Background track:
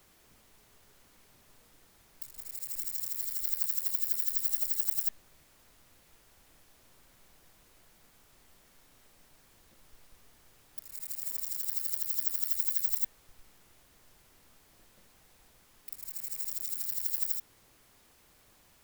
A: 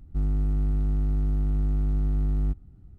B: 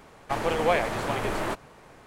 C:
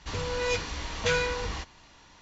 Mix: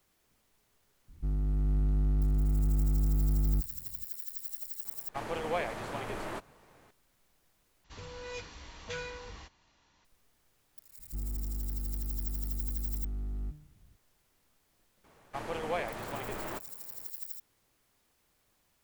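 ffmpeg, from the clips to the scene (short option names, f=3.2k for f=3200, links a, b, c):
-filter_complex "[1:a]asplit=2[a][b];[2:a]asplit=2[c][d];[0:a]volume=-10dB[e];[a]dynaudnorm=f=340:g=3:m=3.5dB[f];[b]bandreject=f=75.25:t=h:w=4,bandreject=f=150.5:t=h:w=4,bandreject=f=225.75:t=h:w=4,bandreject=f=301:t=h:w=4,bandreject=f=376.25:t=h:w=4,bandreject=f=451.5:t=h:w=4,bandreject=f=526.75:t=h:w=4,bandreject=f=602:t=h:w=4,bandreject=f=677.25:t=h:w=4,bandreject=f=752.5:t=h:w=4,bandreject=f=827.75:t=h:w=4,bandreject=f=903:t=h:w=4,bandreject=f=978.25:t=h:w=4,bandreject=f=1.0535k:t=h:w=4,bandreject=f=1.12875k:t=h:w=4,bandreject=f=1.204k:t=h:w=4,bandreject=f=1.27925k:t=h:w=4,bandreject=f=1.3545k:t=h:w=4,bandreject=f=1.42975k:t=h:w=4,bandreject=f=1.505k:t=h:w=4,bandreject=f=1.58025k:t=h:w=4,bandreject=f=1.6555k:t=h:w=4,bandreject=f=1.73075k:t=h:w=4,bandreject=f=1.806k:t=h:w=4,bandreject=f=1.88125k:t=h:w=4,bandreject=f=1.9565k:t=h:w=4,bandreject=f=2.03175k:t=h:w=4,bandreject=f=2.107k:t=h:w=4,bandreject=f=2.18225k:t=h:w=4,bandreject=f=2.2575k:t=h:w=4,bandreject=f=2.33275k:t=h:w=4,bandreject=f=2.408k:t=h:w=4,bandreject=f=2.48325k:t=h:w=4,bandreject=f=2.5585k:t=h:w=4[g];[e]asplit=2[h][i];[h]atrim=end=7.844[j];[3:a]atrim=end=2.21,asetpts=PTS-STARTPTS,volume=-13.5dB[k];[i]atrim=start=10.046[l];[f]atrim=end=2.98,asetpts=PTS-STARTPTS,volume=-6.5dB,afade=t=in:d=0.004:c=hsin,afade=t=out:st=2.976:d=0.004:c=hsin,adelay=1080[m];[c]atrim=end=2.06,asetpts=PTS-STARTPTS,volume=-9.5dB,afade=t=in:d=0.004:c=hsin,afade=t=out:st=2.056:d=0.004:c=hsin,adelay=213885S[n];[g]atrim=end=2.98,asetpts=PTS-STARTPTS,volume=-11.5dB,afade=t=in:d=0.004:c=hsin,afade=t=out:st=2.976:d=0.004:c=hsin,adelay=484218S[o];[d]atrim=end=2.06,asetpts=PTS-STARTPTS,volume=-10.5dB,afade=t=in:d=0.004:c=hsin,afade=t=out:st=2.056:d=0.004:c=hsin,adelay=15040[p];[j][k]acrossfade=d=0.004:c1=hsin:c2=hsin[q];[q][l]acrossfade=d=0.004:c1=hsin:c2=hsin[r];[r][m][n][o][p]amix=inputs=5:normalize=0"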